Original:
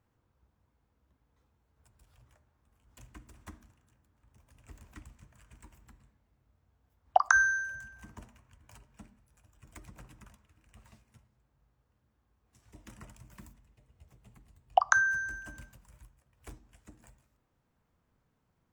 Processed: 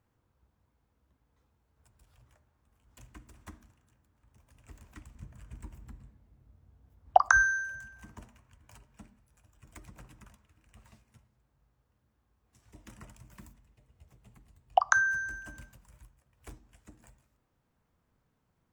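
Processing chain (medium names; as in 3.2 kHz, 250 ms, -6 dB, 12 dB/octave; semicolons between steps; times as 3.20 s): 5.15–7.43 s: bass shelf 470 Hz +11 dB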